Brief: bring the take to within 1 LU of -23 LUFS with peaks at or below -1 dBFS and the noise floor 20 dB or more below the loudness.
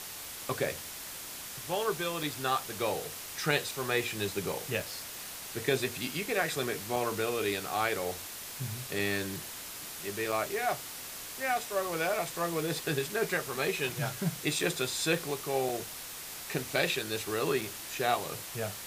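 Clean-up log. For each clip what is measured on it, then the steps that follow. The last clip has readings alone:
dropouts 8; longest dropout 3.5 ms; noise floor -43 dBFS; noise floor target -53 dBFS; loudness -32.5 LUFS; peak level -13.0 dBFS; loudness target -23.0 LUFS
-> interpolate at 2.23/4.80/6.96/8.99/10.32/14.59/15.69/17.61 s, 3.5 ms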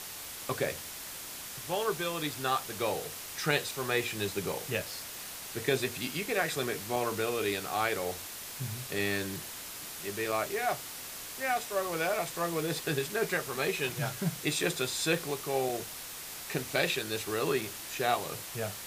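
dropouts 0; noise floor -43 dBFS; noise floor target -53 dBFS
-> noise reduction 10 dB, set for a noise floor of -43 dBFS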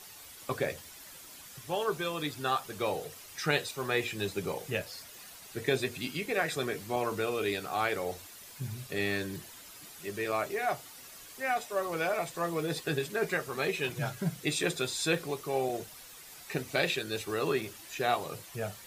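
noise floor -50 dBFS; noise floor target -53 dBFS
-> noise reduction 6 dB, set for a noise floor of -50 dBFS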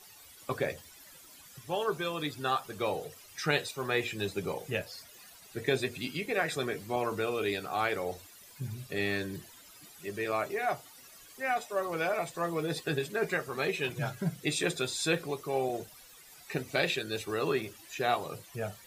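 noise floor -54 dBFS; loudness -33.0 LUFS; peak level -13.5 dBFS; loudness target -23.0 LUFS
-> trim +10 dB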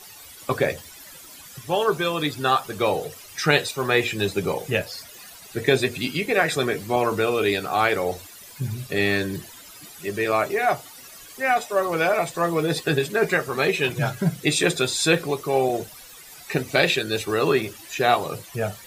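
loudness -23.0 LUFS; peak level -3.5 dBFS; noise floor -44 dBFS

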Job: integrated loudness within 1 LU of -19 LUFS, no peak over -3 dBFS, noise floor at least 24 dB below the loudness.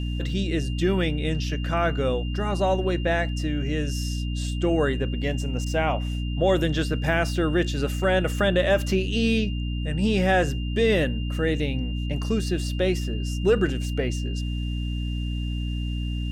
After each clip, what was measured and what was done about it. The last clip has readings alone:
hum 60 Hz; highest harmonic 300 Hz; hum level -25 dBFS; steady tone 2.8 kHz; tone level -40 dBFS; loudness -25.0 LUFS; peak level -9.0 dBFS; loudness target -19.0 LUFS
-> de-hum 60 Hz, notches 5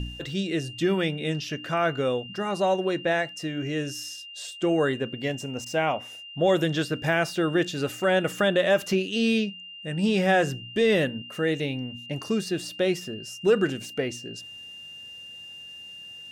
hum not found; steady tone 2.8 kHz; tone level -40 dBFS
-> band-stop 2.8 kHz, Q 30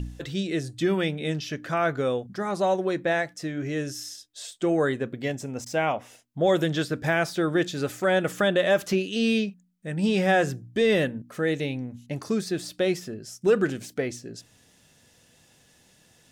steady tone not found; loudness -26.5 LUFS; peak level -11.5 dBFS; loudness target -19.0 LUFS
-> trim +7.5 dB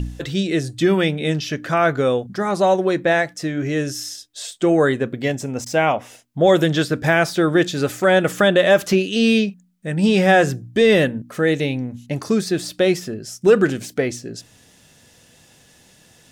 loudness -19.0 LUFS; peak level -4.0 dBFS; noise floor -53 dBFS

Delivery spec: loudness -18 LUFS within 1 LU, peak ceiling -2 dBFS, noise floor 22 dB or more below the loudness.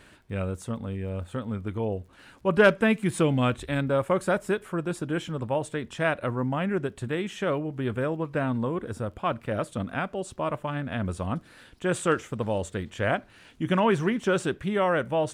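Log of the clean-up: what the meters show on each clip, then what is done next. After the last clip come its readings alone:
tick rate 26 per s; loudness -28.0 LUFS; peak level -7.5 dBFS; loudness target -18.0 LUFS
-> de-click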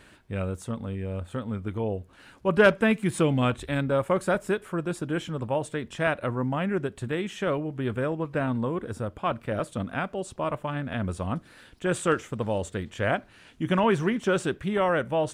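tick rate 0 per s; loudness -28.0 LUFS; peak level -7.5 dBFS; loudness target -18.0 LUFS
-> trim +10 dB; peak limiter -2 dBFS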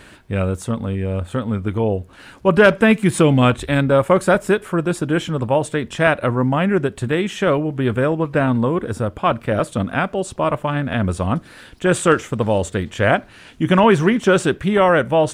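loudness -18.5 LUFS; peak level -2.0 dBFS; noise floor -45 dBFS

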